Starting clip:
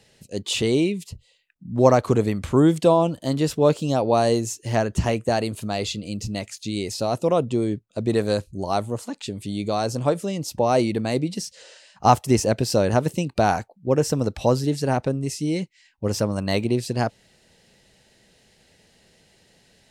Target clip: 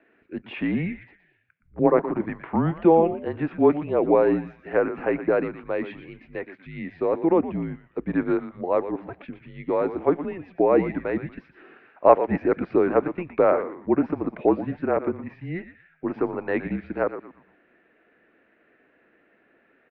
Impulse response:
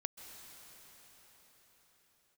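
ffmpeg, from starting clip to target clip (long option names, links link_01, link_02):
-filter_complex "[0:a]asettb=1/sr,asplit=3[link_01][link_02][link_03];[link_01]atrim=end=1.794[link_04];[link_02]atrim=start=1.79:end=2.29,asetpts=PTS-STARTPTS,afade=type=in:duration=0.004:curve=qsin,afade=type=out:start_time=0.496:duration=0.004:curve=qsin,aeval=exprs='val(0)*sin(2*PI*67*n/s)':channel_layout=same[link_05];[link_03]atrim=start=2.286[link_06];[link_04][link_05]acrossfade=duration=0.004:curve1=hsin:curve2=qsin[link_07];[link_07][link_06]acrossfade=duration=0.004:curve1=qsin:curve2=hsin,asplit=5[link_08][link_09][link_10][link_11][link_12];[link_09]adelay=118,afreqshift=-120,volume=-11dB[link_13];[link_10]adelay=236,afreqshift=-240,volume=-19.9dB[link_14];[link_11]adelay=354,afreqshift=-360,volume=-28.7dB[link_15];[link_12]adelay=472,afreqshift=-480,volume=-37.6dB[link_16];[link_08][link_13][link_14][link_15][link_16]amix=inputs=5:normalize=0,highpass=frequency=430:width_type=q:width=0.5412,highpass=frequency=430:width_type=q:width=1.307,lowpass=frequency=2300:width_type=q:width=0.5176,lowpass=frequency=2300:width_type=q:width=0.7071,lowpass=frequency=2300:width_type=q:width=1.932,afreqshift=-170,volume=2dB"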